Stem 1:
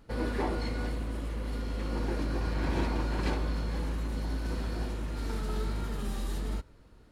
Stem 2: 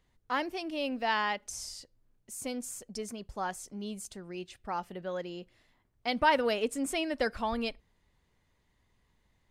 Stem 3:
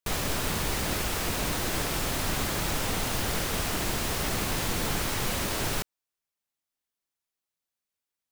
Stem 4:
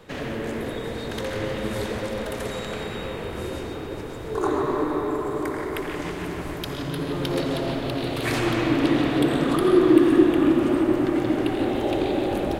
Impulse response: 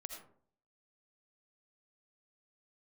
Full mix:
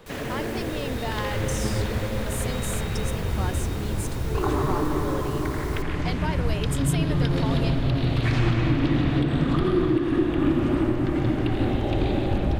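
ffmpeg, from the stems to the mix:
-filter_complex "[0:a]adelay=1250,volume=-8.5dB[link_01];[1:a]alimiter=level_in=1dB:limit=-24dB:level=0:latency=1,volume=-1dB,highshelf=frequency=7900:gain=10.5,volume=0.5dB[link_02];[2:a]volume=-13dB[link_03];[3:a]acrossover=split=5900[link_04][link_05];[link_05]acompressor=threshold=-59dB:ratio=4:attack=1:release=60[link_06];[link_04][link_06]amix=inputs=2:normalize=0,asubboost=boost=6:cutoff=160,volume=-0.5dB[link_07];[link_01][link_02][link_03][link_07]amix=inputs=4:normalize=0,alimiter=limit=-12dB:level=0:latency=1:release=405"

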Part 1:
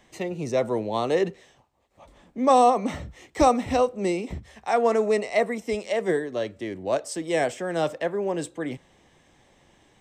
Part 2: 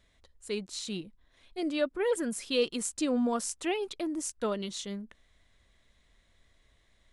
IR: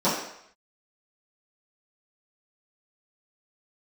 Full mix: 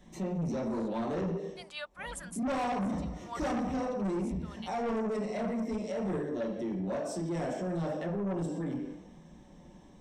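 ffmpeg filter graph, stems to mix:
-filter_complex "[0:a]bass=frequency=250:gain=12,treble=frequency=4000:gain=3,volume=-12.5dB,asplit=3[link_01][link_02][link_03];[link_02]volume=-8dB[link_04];[1:a]highpass=frequency=850:width=0.5412,highpass=frequency=850:width=1.3066,volume=-2.5dB[link_05];[link_03]apad=whole_len=314408[link_06];[link_05][link_06]sidechaincompress=threshold=-46dB:ratio=4:attack=16:release=320[link_07];[2:a]atrim=start_sample=2205[link_08];[link_04][link_08]afir=irnorm=-1:irlink=0[link_09];[link_01][link_07][link_09]amix=inputs=3:normalize=0,lowshelf=frequency=100:gain=7.5,asoftclip=type=tanh:threshold=-21dB,alimiter=level_in=5dB:limit=-24dB:level=0:latency=1:release=134,volume=-5dB"

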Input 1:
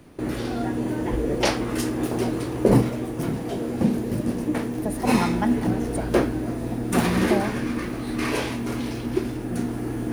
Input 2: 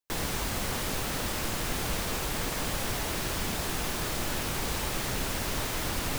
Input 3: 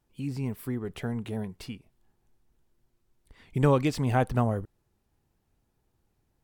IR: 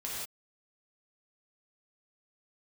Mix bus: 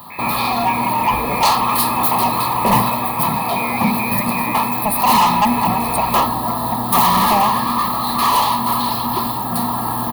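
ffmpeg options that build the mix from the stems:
-filter_complex "[0:a]firequalizer=gain_entry='entry(220,0);entry(310,-16);entry(480,-12);entry(950,13);entry(2100,-14);entry(4200,6);entry(6000,-18);entry(9900,0);entry(15000,13)':delay=0.05:min_phase=1,asplit=2[link_01][link_02];[link_02]highpass=frequency=720:poles=1,volume=24dB,asoftclip=type=tanh:threshold=-5dB[link_03];[link_01][link_03]amix=inputs=2:normalize=0,lowpass=frequency=1500:poles=1,volume=-6dB,volume=0.5dB[link_04];[1:a]volume=-4.5dB[link_05];[2:a]volume=-1dB[link_06];[link_05][link_06]amix=inputs=2:normalize=0,lowpass=frequency=2200:width_type=q:width=0.5098,lowpass=frequency=2200:width_type=q:width=0.6013,lowpass=frequency=2200:width_type=q:width=0.9,lowpass=frequency=2200:width_type=q:width=2.563,afreqshift=-2600,alimiter=limit=-21.5dB:level=0:latency=1,volume=0dB[link_07];[link_04][link_07]amix=inputs=2:normalize=0,asuperstop=centerf=1500:order=12:qfactor=5.3,aemphasis=mode=production:type=75fm"

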